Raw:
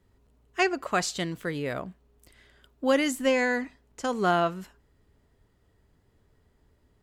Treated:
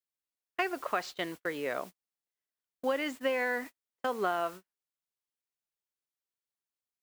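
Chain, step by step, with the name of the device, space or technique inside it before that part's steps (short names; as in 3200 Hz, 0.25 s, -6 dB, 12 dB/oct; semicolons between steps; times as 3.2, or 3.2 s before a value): baby monitor (BPF 390–3100 Hz; compressor 10:1, threshold -26 dBFS, peak gain reduction 8 dB; white noise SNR 18 dB; gate -41 dBFS, range -42 dB)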